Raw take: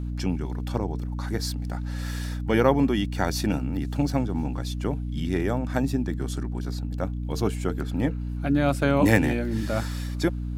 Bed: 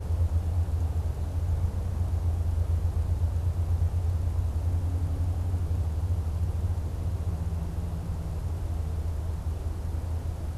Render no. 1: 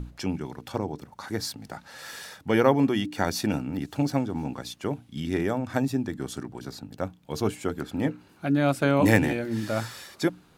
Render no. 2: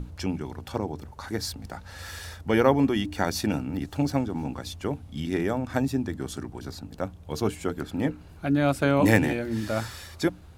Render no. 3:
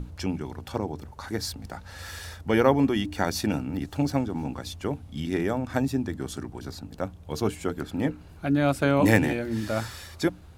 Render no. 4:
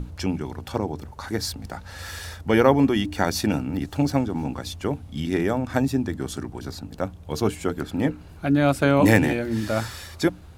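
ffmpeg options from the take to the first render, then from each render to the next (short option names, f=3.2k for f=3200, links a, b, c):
-af "bandreject=f=60:t=h:w=6,bandreject=f=120:t=h:w=6,bandreject=f=180:t=h:w=6,bandreject=f=240:t=h:w=6,bandreject=f=300:t=h:w=6"
-filter_complex "[1:a]volume=-16.5dB[a];[0:a][a]amix=inputs=2:normalize=0"
-af anull
-af "volume=3.5dB,alimiter=limit=-2dB:level=0:latency=1"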